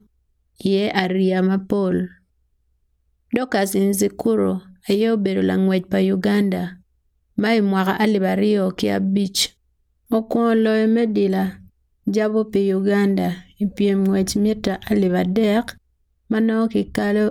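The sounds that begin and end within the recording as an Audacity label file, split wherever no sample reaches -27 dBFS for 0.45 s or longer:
0.610000	2.060000	sound
3.330000	6.680000	sound
7.380000	9.460000	sound
10.120000	11.500000	sound
12.070000	15.700000	sound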